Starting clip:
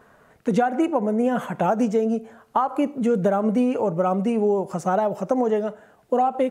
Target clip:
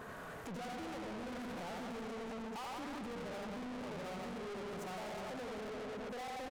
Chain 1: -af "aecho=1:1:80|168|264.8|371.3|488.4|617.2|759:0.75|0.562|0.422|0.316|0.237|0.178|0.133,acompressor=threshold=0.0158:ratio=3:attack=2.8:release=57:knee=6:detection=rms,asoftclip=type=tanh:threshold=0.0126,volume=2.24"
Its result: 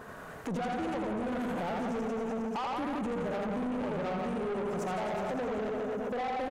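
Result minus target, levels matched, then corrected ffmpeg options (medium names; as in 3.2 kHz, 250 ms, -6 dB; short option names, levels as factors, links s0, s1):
saturation: distortion -5 dB
-af "aecho=1:1:80|168|264.8|371.3|488.4|617.2|759:0.75|0.562|0.422|0.316|0.237|0.178|0.133,acompressor=threshold=0.0158:ratio=3:attack=2.8:release=57:knee=6:detection=rms,asoftclip=type=tanh:threshold=0.00316,volume=2.24"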